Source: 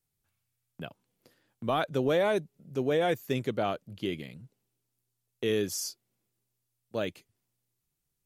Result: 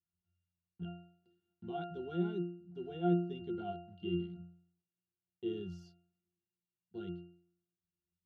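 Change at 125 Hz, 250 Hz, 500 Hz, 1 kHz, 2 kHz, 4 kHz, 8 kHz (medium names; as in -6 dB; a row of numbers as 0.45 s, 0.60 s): -3.0 dB, -3.0 dB, -11.5 dB, -11.0 dB, -18.5 dB, -16.0 dB, under -35 dB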